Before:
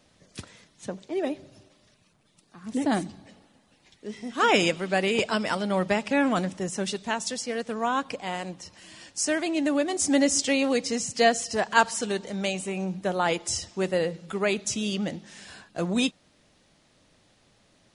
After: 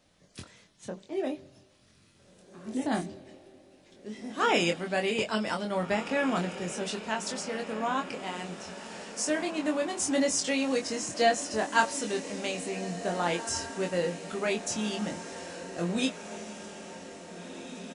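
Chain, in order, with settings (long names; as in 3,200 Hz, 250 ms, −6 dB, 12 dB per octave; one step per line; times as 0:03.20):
double-tracking delay 23 ms −4 dB
on a send: feedback delay with all-pass diffusion 1,772 ms, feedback 59%, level −12 dB
on the sum: level −5.5 dB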